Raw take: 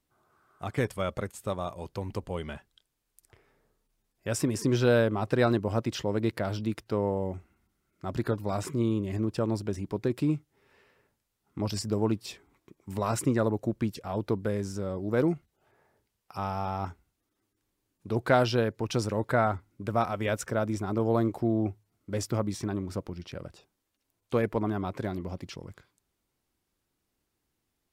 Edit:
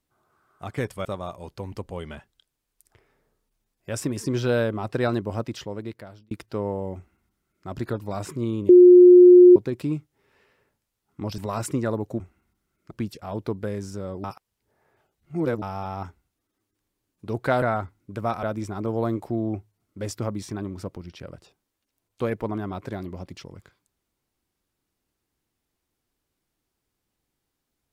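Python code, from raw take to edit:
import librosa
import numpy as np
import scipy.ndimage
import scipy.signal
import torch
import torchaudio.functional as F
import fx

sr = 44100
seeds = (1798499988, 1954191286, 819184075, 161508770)

y = fx.edit(x, sr, fx.cut(start_s=1.05, length_s=0.38),
    fx.fade_out_span(start_s=5.72, length_s=0.97),
    fx.duplicate(start_s=7.34, length_s=0.71, to_s=13.73),
    fx.bleep(start_s=9.07, length_s=0.87, hz=358.0, db=-6.5),
    fx.cut(start_s=11.76, length_s=1.15),
    fx.reverse_span(start_s=15.06, length_s=1.38),
    fx.cut(start_s=18.44, length_s=0.89),
    fx.cut(start_s=20.14, length_s=0.41), tone=tone)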